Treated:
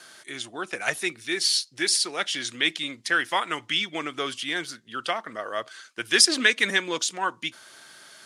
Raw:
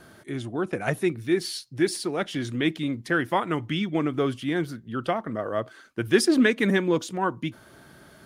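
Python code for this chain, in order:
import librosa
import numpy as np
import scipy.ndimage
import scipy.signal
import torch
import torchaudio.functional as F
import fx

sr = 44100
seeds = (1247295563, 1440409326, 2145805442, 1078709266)

y = fx.weighting(x, sr, curve='ITU-R 468')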